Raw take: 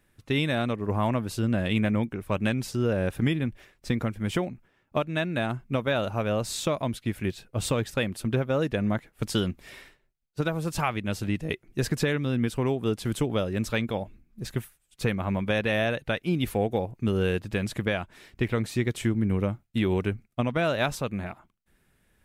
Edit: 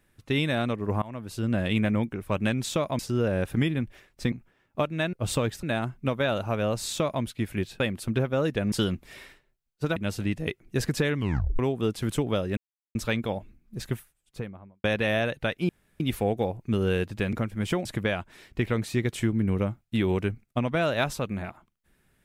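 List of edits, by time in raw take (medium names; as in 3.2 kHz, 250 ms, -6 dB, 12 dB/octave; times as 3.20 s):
1.02–1.56 s: fade in linear, from -22.5 dB
3.97–4.49 s: move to 17.67 s
6.55–6.90 s: copy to 2.64 s
7.47–7.97 s: move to 5.30 s
8.89–9.28 s: delete
10.52–10.99 s: delete
12.19 s: tape stop 0.43 s
13.60 s: insert silence 0.38 s
14.51–15.49 s: studio fade out
16.34 s: insert room tone 0.31 s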